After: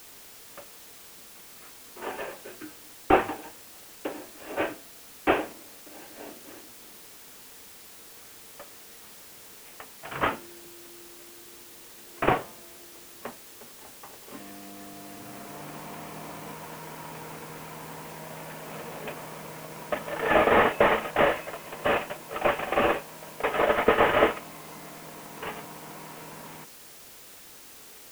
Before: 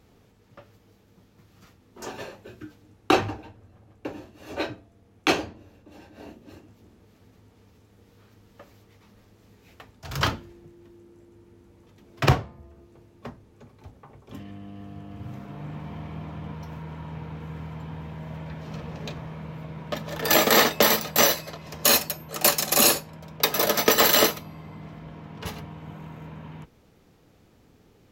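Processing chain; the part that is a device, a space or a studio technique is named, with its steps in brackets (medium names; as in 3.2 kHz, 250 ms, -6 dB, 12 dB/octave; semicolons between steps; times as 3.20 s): army field radio (band-pass 350–3000 Hz; CVSD coder 16 kbps; white noise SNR 17 dB); trim +3.5 dB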